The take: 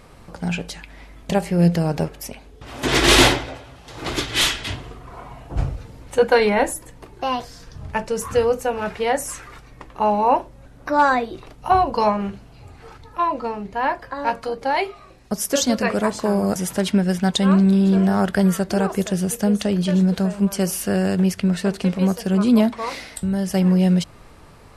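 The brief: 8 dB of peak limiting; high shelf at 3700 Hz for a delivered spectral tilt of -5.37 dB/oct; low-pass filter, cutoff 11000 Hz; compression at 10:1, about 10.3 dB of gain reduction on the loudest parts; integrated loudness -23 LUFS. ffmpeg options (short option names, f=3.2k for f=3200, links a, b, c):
-af "lowpass=11k,highshelf=f=3.7k:g=-4.5,acompressor=threshold=-21dB:ratio=10,volume=5.5dB,alimiter=limit=-12.5dB:level=0:latency=1"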